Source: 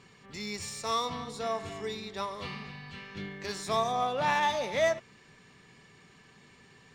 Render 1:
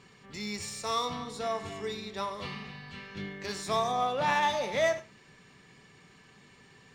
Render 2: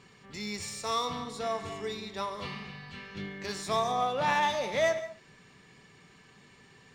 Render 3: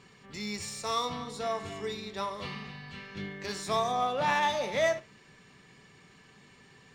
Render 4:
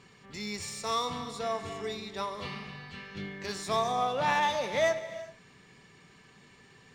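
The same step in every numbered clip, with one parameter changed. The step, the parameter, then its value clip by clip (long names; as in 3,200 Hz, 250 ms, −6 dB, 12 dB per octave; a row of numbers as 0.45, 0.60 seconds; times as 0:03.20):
reverb whose tail is shaped and stops, gate: 130, 220, 90, 410 milliseconds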